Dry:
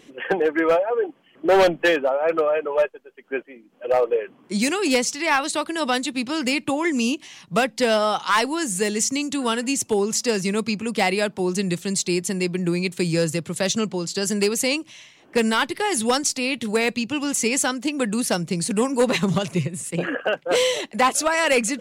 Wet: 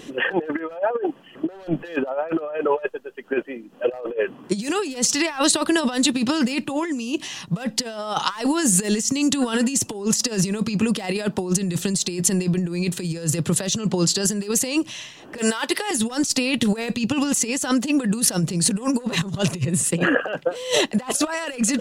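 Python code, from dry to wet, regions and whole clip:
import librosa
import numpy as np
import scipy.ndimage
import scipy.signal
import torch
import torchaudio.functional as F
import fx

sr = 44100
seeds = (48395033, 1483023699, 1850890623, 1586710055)

y = fx.chain(x, sr, fx.highpass(hz=470.0, slope=12),
    fx.band_squash(depth_pct=100), at=(15.38, 15.91))
y = fx.low_shelf(y, sr, hz=170.0, db=3.0)
y = fx.notch(y, sr, hz=2200.0, q=7.3)
y = fx.over_compress(y, sr, threshold_db=-26.0, ratio=-0.5)
y = y * librosa.db_to_amplitude(4.5)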